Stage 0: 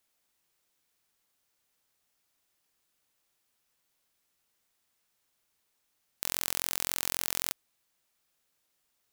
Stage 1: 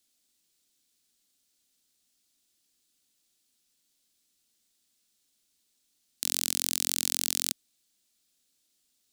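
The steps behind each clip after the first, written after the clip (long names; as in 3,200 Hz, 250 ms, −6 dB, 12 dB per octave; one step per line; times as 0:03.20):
octave-band graphic EQ 125/250/500/1,000/2,000/4,000/8,000 Hz −5/+8/−4/−9/−4/+6/+6 dB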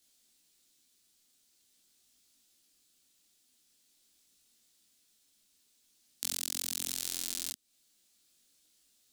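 downward compressor 3 to 1, threshold −35 dBFS, peak gain reduction 11 dB
micro pitch shift up and down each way 16 cents
level +7.5 dB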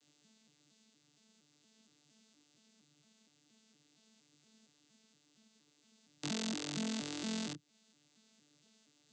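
vocoder with an arpeggio as carrier bare fifth, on D3, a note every 233 ms
level +1.5 dB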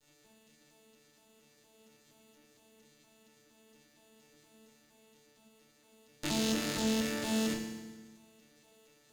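lower of the sound and its delayed copy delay 9 ms
feedback delay network reverb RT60 1.3 s, low-frequency decay 1.35×, high-frequency decay 1×, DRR 1.5 dB
level +5 dB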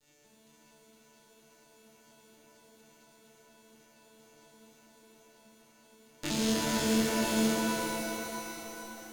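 reverb with rising layers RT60 3.4 s, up +7 semitones, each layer −2 dB, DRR 1.5 dB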